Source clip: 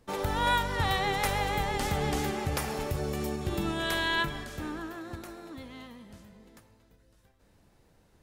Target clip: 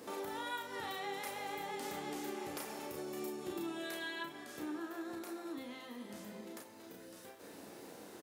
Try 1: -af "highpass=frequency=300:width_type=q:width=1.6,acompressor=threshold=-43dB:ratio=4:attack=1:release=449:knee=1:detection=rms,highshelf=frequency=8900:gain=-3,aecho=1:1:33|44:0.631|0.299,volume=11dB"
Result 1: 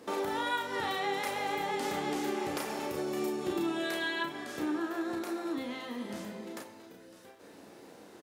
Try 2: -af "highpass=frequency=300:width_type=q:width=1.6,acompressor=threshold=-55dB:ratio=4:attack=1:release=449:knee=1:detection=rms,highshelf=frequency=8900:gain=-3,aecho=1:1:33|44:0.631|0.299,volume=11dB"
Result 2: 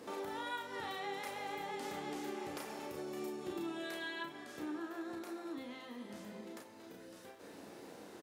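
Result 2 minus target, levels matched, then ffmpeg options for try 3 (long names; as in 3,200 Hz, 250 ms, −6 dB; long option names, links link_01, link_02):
8,000 Hz band −4.0 dB
-af "highpass=frequency=300:width_type=q:width=1.6,acompressor=threshold=-55dB:ratio=4:attack=1:release=449:knee=1:detection=rms,highshelf=frequency=8900:gain=7,aecho=1:1:33|44:0.631|0.299,volume=11dB"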